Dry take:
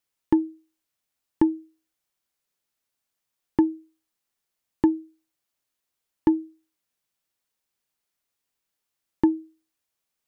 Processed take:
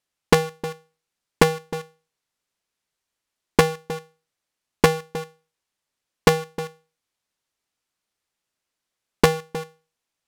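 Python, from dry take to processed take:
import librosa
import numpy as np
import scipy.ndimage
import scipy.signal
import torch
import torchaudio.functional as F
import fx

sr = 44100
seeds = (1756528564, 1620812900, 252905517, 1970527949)

p1 = fx.cycle_switch(x, sr, every=2, mode='inverted')
p2 = p1 + 10.0 ** (-13.5 / 20.0) * np.pad(p1, (int(311 * sr / 1000.0), 0))[:len(p1)]
p3 = fx.quant_companded(p2, sr, bits=2)
p4 = p2 + (p3 * librosa.db_to_amplitude(-10.0))
y = np.interp(np.arange(len(p4)), np.arange(len(p4))[::2], p4[::2])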